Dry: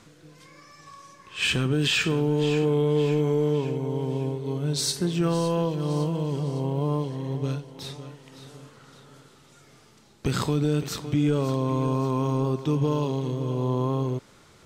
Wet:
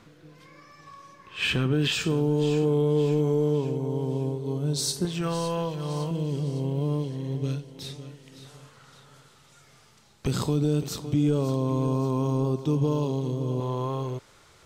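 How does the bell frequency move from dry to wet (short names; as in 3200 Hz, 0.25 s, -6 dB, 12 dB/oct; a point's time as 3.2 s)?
bell -9 dB 1.4 oct
8000 Hz
from 1.92 s 2000 Hz
from 5.05 s 270 Hz
from 6.11 s 960 Hz
from 8.45 s 300 Hz
from 10.27 s 1800 Hz
from 13.6 s 220 Hz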